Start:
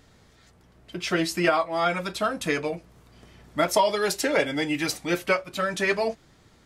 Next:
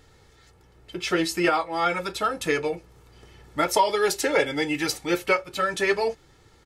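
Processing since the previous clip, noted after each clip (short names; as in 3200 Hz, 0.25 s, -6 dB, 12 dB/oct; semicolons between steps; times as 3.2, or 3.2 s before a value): comb 2.3 ms, depth 52%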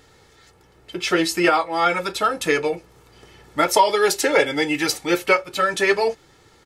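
low shelf 110 Hz -10 dB; gain +5 dB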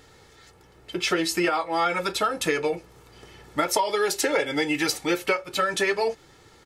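compressor 6:1, threshold -20 dBFS, peak gain reduction 10 dB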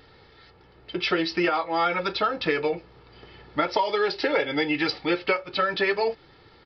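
downsampling 11025 Hz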